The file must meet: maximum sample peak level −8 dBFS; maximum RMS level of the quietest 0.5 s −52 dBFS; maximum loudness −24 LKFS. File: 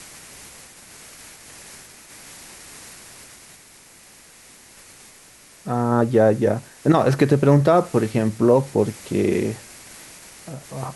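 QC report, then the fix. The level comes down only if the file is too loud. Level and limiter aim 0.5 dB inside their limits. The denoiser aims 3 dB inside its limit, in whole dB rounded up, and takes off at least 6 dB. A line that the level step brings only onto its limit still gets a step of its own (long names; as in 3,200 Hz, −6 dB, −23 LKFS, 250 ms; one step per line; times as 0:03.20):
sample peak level −5.0 dBFS: out of spec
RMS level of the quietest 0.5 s −48 dBFS: out of spec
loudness −19.5 LKFS: out of spec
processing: level −5 dB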